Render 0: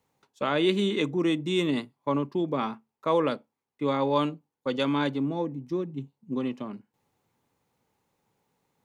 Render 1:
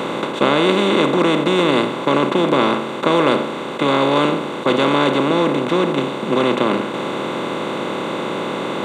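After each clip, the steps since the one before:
compressor on every frequency bin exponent 0.2
level +3 dB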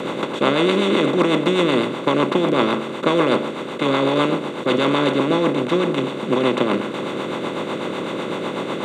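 rotating-speaker cabinet horn 8 Hz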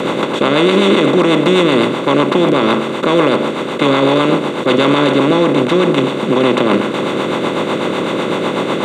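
brickwall limiter −11 dBFS, peak gain reduction 7.5 dB
level +8.5 dB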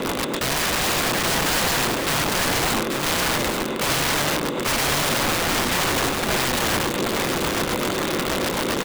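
in parallel at −11 dB: sample-rate reduction 1,400 Hz, jitter 0%
on the sum: wrap-around overflow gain 9 dB
single-tap delay 835 ms −5 dB
level −8.5 dB

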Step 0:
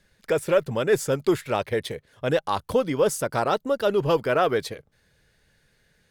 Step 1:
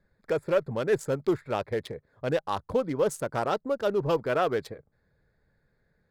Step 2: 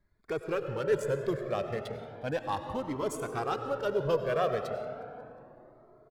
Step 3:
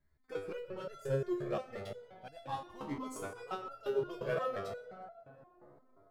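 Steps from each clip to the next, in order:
adaptive Wiener filter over 15 samples; level −4 dB
repeating echo 180 ms, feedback 55%, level −22.5 dB; convolution reverb RT60 3.5 s, pre-delay 55 ms, DRR 6.5 dB; flanger whose copies keep moving one way rising 0.34 Hz
step-sequenced resonator 5.7 Hz 71–680 Hz; level +4.5 dB

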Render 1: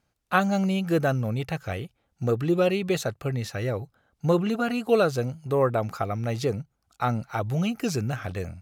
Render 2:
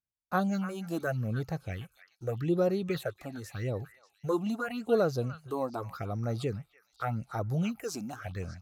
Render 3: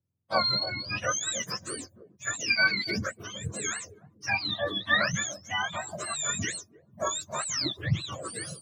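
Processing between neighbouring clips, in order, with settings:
noise gate with hold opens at −45 dBFS; all-pass phaser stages 6, 0.84 Hz, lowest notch 110–3,000 Hz; echo through a band-pass that steps 296 ms, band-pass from 1,500 Hz, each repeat 1.4 octaves, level −9.5 dB; level −5 dB
frequency axis turned over on the octave scale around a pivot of 910 Hz; level +6 dB

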